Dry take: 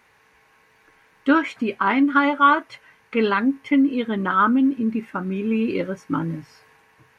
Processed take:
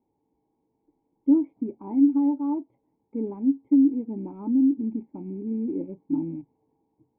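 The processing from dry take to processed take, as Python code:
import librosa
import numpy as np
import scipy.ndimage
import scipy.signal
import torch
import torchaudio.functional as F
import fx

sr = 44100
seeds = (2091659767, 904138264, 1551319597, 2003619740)

y = fx.rattle_buzz(x, sr, strikes_db=-37.0, level_db=-20.0)
y = fx.formant_cascade(y, sr, vowel='u')
y = fx.peak_eq(y, sr, hz=1500.0, db=-15.0, octaves=0.96)
y = y * 10.0 ** (2.0 / 20.0)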